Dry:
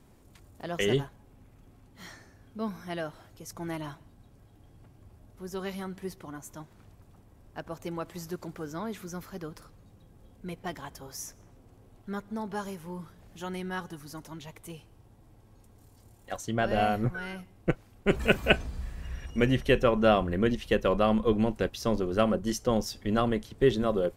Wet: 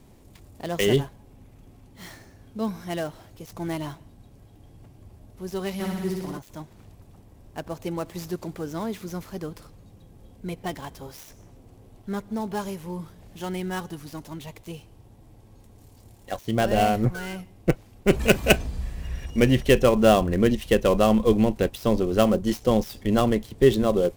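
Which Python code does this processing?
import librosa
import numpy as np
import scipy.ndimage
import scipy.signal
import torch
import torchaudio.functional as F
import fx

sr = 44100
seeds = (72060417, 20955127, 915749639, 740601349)

y = fx.dead_time(x, sr, dead_ms=0.066)
y = fx.peak_eq(y, sr, hz=1400.0, db=-5.5, octaves=0.81)
y = fx.room_flutter(y, sr, wall_m=10.3, rt60_s=1.3, at=(5.79, 6.38), fade=0.02)
y = y * 10.0 ** (6.0 / 20.0)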